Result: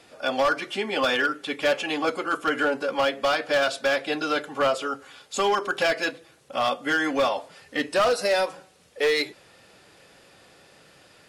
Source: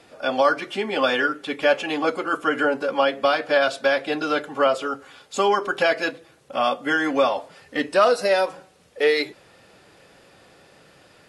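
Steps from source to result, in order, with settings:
high-shelf EQ 2,100 Hz +5 dB
hard clipping −13.5 dBFS, distortion −15 dB
level −3 dB

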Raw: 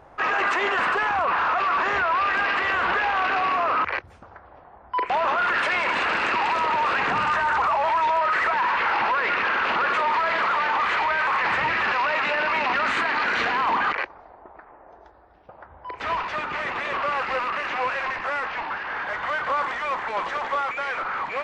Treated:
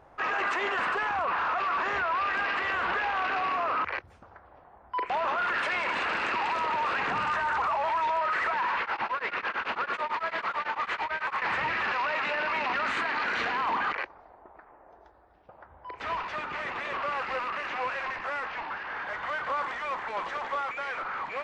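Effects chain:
0:08.81–0:11.42: tremolo along a rectified sine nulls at 9 Hz
level −6 dB

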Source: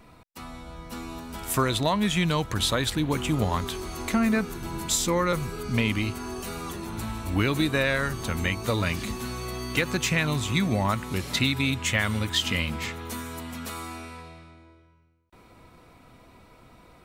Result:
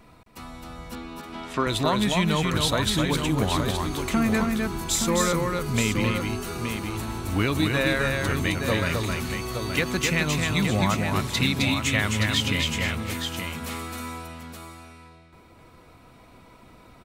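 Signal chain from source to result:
0:00.95–0:01.67: Chebyshev band-pass filter 210–3,600 Hz, order 2
multi-tap delay 263/872 ms −3.5/−7 dB

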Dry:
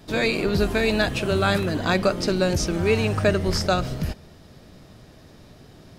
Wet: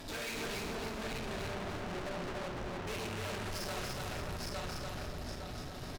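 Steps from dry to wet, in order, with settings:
0:00.62–0:02.87: moving average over 41 samples
convolution reverb RT60 0.90 s, pre-delay 3 ms, DRR 0 dB
downward compressor, threshold −20 dBFS, peak gain reduction 9 dB
repeating echo 858 ms, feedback 23%, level −8 dB
tube saturation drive 41 dB, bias 0.55
brickwall limiter −46 dBFS, peak gain reduction 9 dB
parametric band 190 Hz −7 dB 2.4 octaves
feedback echo at a low word length 290 ms, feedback 35%, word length 13 bits, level −3 dB
level +10 dB

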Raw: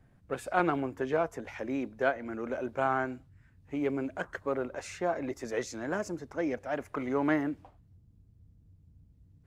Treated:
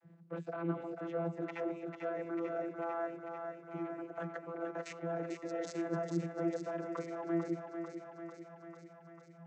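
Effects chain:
output level in coarse steps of 22 dB
channel vocoder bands 32, saw 168 Hz
feedback echo with a high-pass in the loop 445 ms, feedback 72%, high-pass 320 Hz, level −5.5 dB
level +7 dB

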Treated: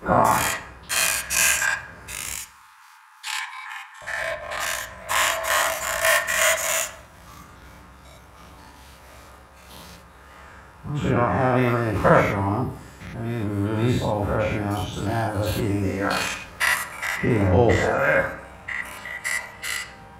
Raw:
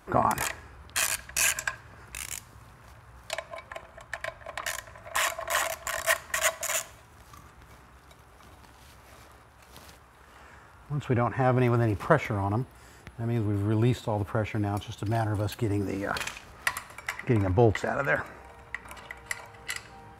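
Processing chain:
every bin's largest magnitude spread in time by 120 ms
0:02.35–0:04.02: linear-phase brick-wall high-pass 790 Hz
convolution reverb RT60 0.70 s, pre-delay 3 ms, DRR 5 dB

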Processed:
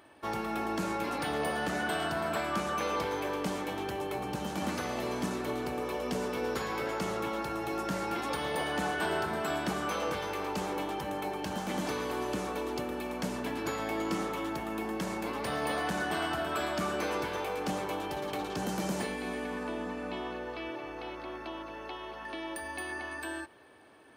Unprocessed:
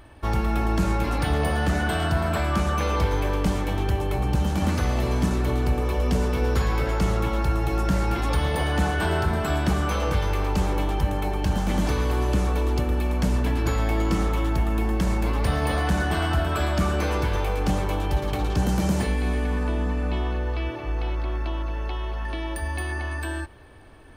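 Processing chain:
high-pass filter 250 Hz 12 dB per octave
level −5 dB

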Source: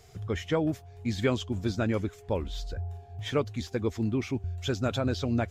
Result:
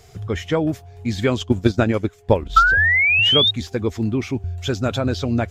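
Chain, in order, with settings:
0:02.56–0:03.51: sound drawn into the spectrogram rise 1,300–3,800 Hz −23 dBFS
0:01.39–0:02.96: transient designer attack +9 dB, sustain −8 dB
level +7 dB

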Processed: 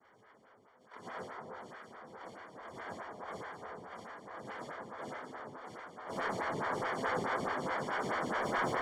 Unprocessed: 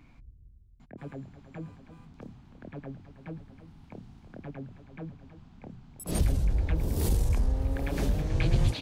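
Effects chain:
0:01.37–0:02.04: low-shelf EQ 490 Hz −11 dB
cochlear-implant simulation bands 1
soft clipping −25 dBFS, distortion −13 dB
Savitzky-Golay smoothing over 41 samples
on a send: delay that swaps between a low-pass and a high-pass 314 ms, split 1,200 Hz, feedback 72%, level −3 dB
on the sum: dense smooth reverb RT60 1.4 s, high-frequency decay 0.6×, DRR −5.5 dB
phaser with staggered stages 4.7 Hz

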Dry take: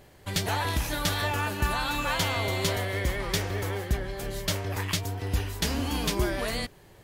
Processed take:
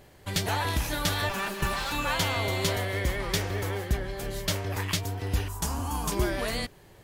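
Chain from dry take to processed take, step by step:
0:01.29–0:01.92: lower of the sound and its delayed copy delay 5.1 ms
0:05.48–0:06.12: octave-band graphic EQ 250/500/1,000/2,000/4,000/8,000 Hz −5/−8/+10/−12/−10/+5 dB

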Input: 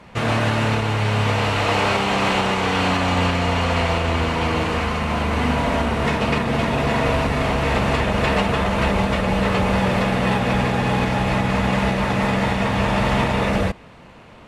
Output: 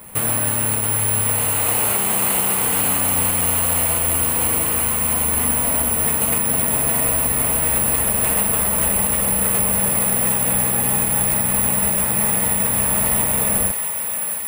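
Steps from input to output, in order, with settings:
bad sample-rate conversion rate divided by 4×, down filtered, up zero stuff
downward compressor 2 to 1, threshold −17 dBFS, peak gain reduction 6.5 dB
feedback echo with a high-pass in the loop 667 ms, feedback 72%, high-pass 830 Hz, level −6.5 dB
level −1 dB

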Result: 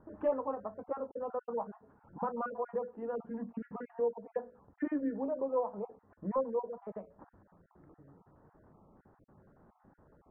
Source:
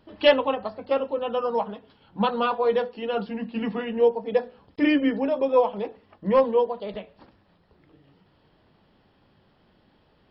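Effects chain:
time-frequency cells dropped at random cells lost 24%
Butterworth low-pass 1,500 Hz 36 dB per octave
downward compressor 1.5 to 1, threshold −52 dBFS, peak gain reduction 14 dB

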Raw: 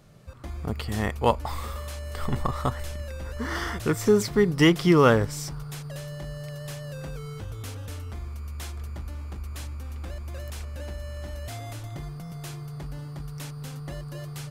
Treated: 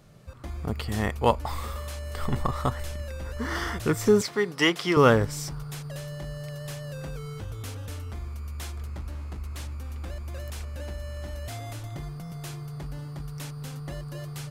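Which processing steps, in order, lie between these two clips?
0:04.21–0:04.97: meter weighting curve A
0:08.83–0:09.72: highs frequency-modulated by the lows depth 0.33 ms

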